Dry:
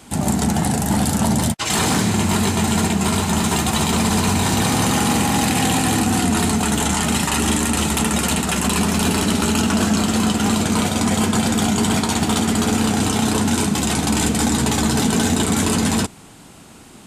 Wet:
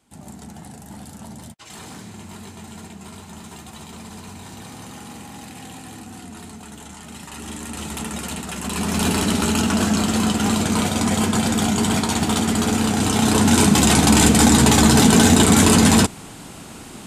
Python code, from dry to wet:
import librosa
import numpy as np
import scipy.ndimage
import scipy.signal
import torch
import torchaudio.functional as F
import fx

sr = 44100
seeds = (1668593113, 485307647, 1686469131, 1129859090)

y = fx.gain(x, sr, db=fx.line((7.03, -20.0), (7.96, -10.0), (8.58, -10.0), (9.02, -1.5), (12.96, -1.5), (13.68, 5.0)))